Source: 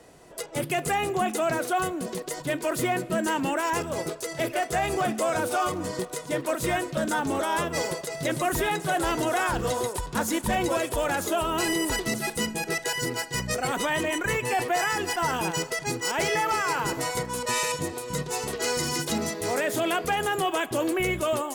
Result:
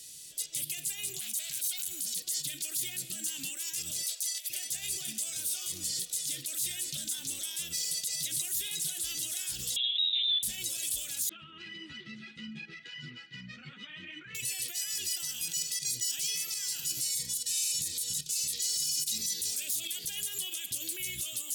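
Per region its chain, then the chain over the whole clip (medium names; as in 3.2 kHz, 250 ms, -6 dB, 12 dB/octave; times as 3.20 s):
1.20–2.16 s: treble shelf 5.5 kHz +9.5 dB + comb 1.3 ms, depth 38% + transformer saturation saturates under 2.1 kHz
4.03–4.50 s: Chebyshev high-pass 510 Hz, order 5 + compressor with a negative ratio -35 dBFS, ratio -0.5
9.76–10.43 s: peaking EQ 1 kHz -9.5 dB 2.7 oct + frequency inversion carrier 3.8 kHz
11.29–14.35 s: cabinet simulation 130–2300 Hz, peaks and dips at 150 Hz +7 dB, 230 Hz +7 dB, 450 Hz -7 dB, 700 Hz -8 dB, 1.3 kHz +8 dB + three-phase chorus
15.79–20.17 s: square tremolo 1.2 Hz, depth 65%, duty 90% + Shepard-style phaser falling 1.5 Hz
whole clip: tilt EQ +3 dB/octave; peak limiter -27 dBFS; FFT filter 130 Hz 0 dB, 1 kHz -30 dB, 3.5 kHz +6 dB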